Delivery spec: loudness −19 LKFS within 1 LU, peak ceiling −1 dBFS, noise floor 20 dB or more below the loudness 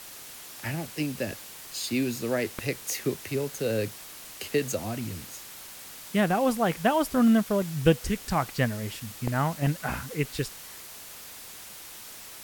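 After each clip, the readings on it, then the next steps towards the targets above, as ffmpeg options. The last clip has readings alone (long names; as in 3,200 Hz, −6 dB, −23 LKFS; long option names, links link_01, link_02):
background noise floor −44 dBFS; target noise floor −48 dBFS; integrated loudness −28.0 LKFS; sample peak −7.0 dBFS; target loudness −19.0 LKFS
→ -af "afftdn=noise_reduction=6:noise_floor=-44"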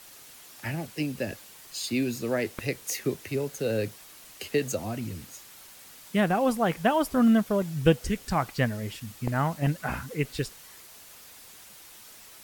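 background noise floor −50 dBFS; integrated loudness −28.5 LKFS; sample peak −7.0 dBFS; target loudness −19.0 LKFS
→ -af "volume=9.5dB,alimiter=limit=-1dB:level=0:latency=1"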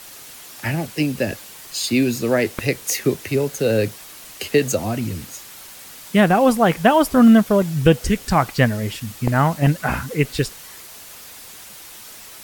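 integrated loudness −19.0 LKFS; sample peak −1.0 dBFS; background noise floor −40 dBFS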